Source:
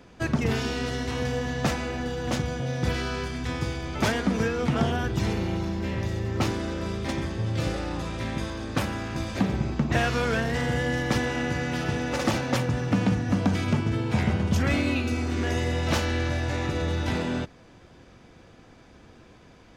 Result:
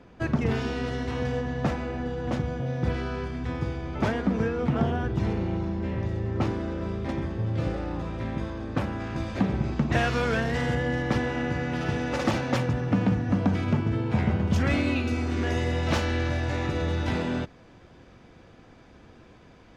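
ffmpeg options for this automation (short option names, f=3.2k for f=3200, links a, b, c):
-af "asetnsamples=n=441:p=0,asendcmd='1.41 lowpass f 1200;9 lowpass f 2300;9.64 lowpass f 4900;10.75 lowpass f 2000;11.81 lowpass f 3700;12.73 lowpass f 1800;14.5 lowpass f 4200',lowpass=f=2k:p=1"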